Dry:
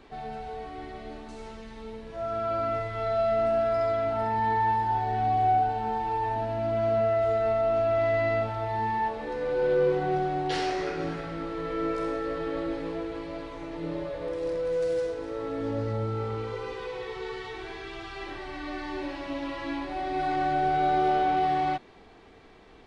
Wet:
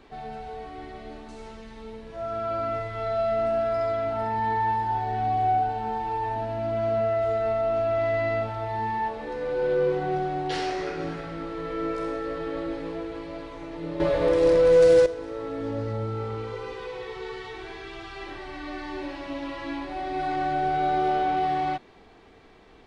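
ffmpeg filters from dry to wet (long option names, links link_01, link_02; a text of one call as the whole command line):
ffmpeg -i in.wav -filter_complex "[0:a]asplit=3[link_01][link_02][link_03];[link_01]atrim=end=14.002[link_04];[link_02]atrim=start=13.998:end=15.062,asetpts=PTS-STARTPTS,volume=11.5dB[link_05];[link_03]atrim=start=15.058[link_06];[link_04][link_05]acrossfade=duration=0.004:curve1=hsin:curve2=hsin[link_07];[link_07][link_06]acrossfade=duration=0.004:curve1=hsin:curve2=hsin" out.wav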